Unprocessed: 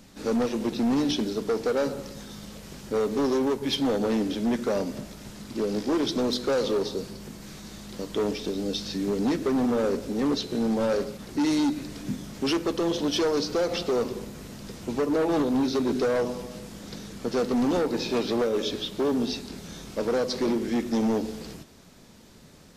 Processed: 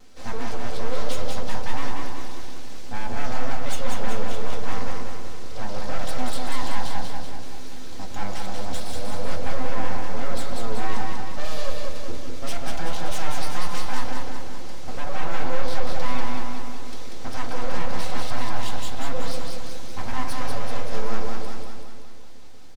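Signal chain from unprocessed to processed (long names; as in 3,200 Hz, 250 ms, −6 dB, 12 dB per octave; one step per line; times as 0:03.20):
low-pass filter 7,700 Hz
mains-hum notches 60/120/180/240/300 Hz
in parallel at +2 dB: brickwall limiter −25 dBFS, peak gain reduction 9 dB
on the sum: tape wow and flutter 52 cents
full-wave rectification
repeating echo 190 ms, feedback 56%, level −3.5 dB
on a send at −3 dB: convolution reverb RT60 0.35 s, pre-delay 4 ms
on the sum: level −8 dB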